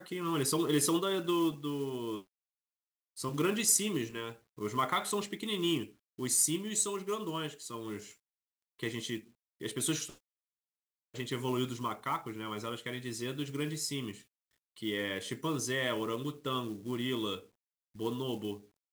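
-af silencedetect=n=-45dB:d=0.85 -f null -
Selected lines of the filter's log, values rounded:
silence_start: 2.21
silence_end: 3.17 | silence_duration: 0.96
silence_start: 10.14
silence_end: 11.14 | silence_duration: 1.00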